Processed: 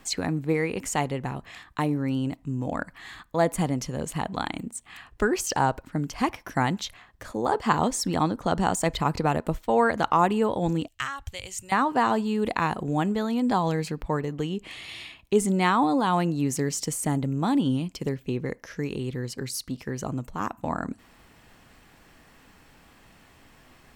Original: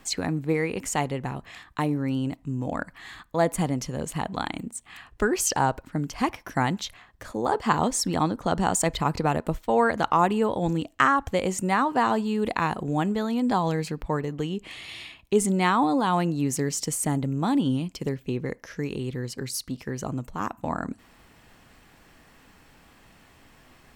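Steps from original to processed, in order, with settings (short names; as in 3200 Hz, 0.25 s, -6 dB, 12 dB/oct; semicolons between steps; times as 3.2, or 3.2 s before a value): de-esser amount 45%; 10.88–11.72 EQ curve 120 Hz 0 dB, 180 Hz -25 dB, 1200 Hz -14 dB, 2900 Hz -1 dB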